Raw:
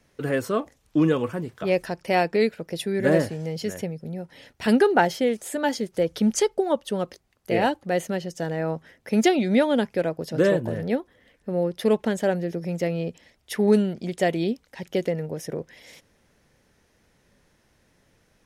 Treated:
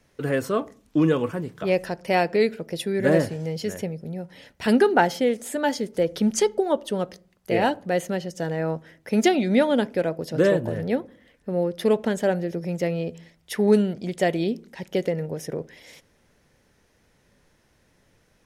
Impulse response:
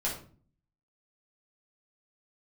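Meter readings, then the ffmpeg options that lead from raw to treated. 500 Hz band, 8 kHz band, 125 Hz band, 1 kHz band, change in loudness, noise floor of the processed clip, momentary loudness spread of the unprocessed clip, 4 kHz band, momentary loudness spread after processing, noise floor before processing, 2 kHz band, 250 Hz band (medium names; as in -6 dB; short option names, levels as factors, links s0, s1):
+0.5 dB, 0.0 dB, +0.5 dB, +0.5 dB, +0.5 dB, -64 dBFS, 12 LU, +0.5 dB, 11 LU, -65 dBFS, +0.5 dB, 0.0 dB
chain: -filter_complex "[0:a]asplit=2[s0][s1];[1:a]atrim=start_sample=2205,highshelf=f=3800:g=-9.5[s2];[s1][s2]afir=irnorm=-1:irlink=0,volume=0.075[s3];[s0][s3]amix=inputs=2:normalize=0"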